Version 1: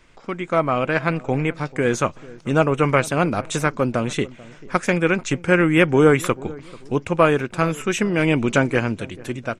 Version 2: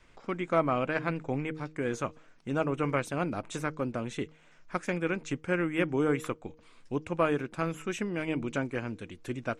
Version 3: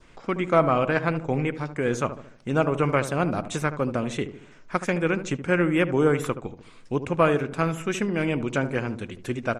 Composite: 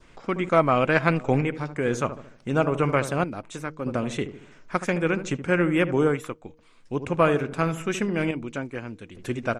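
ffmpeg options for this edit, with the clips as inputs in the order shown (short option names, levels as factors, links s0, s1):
-filter_complex "[1:a]asplit=3[s0][s1][s2];[2:a]asplit=5[s3][s4][s5][s6][s7];[s3]atrim=end=0.492[s8];[0:a]atrim=start=0.488:end=1.412[s9];[s4]atrim=start=1.408:end=3.242[s10];[s0]atrim=start=3.238:end=3.862[s11];[s5]atrim=start=3.858:end=6.25[s12];[s1]atrim=start=6.01:end=7.06[s13];[s6]atrim=start=6.82:end=8.312[s14];[s2]atrim=start=8.308:end=9.152[s15];[s7]atrim=start=9.148[s16];[s8][s9]acrossfade=d=0.004:c1=hsin:c2=hsin[s17];[s17][s10]acrossfade=d=0.004:c1=hsin:c2=hsin[s18];[s18][s11]acrossfade=d=0.004:c1=hsin:c2=hsin[s19];[s19][s12]acrossfade=d=0.004:c1=hsin:c2=hsin[s20];[s20][s13]acrossfade=d=0.24:c1=tri:c2=tri[s21];[s21][s14]acrossfade=d=0.24:c1=tri:c2=tri[s22];[s22][s15]acrossfade=d=0.004:c1=hsin:c2=hsin[s23];[s23][s16]acrossfade=d=0.004:c1=hsin:c2=hsin"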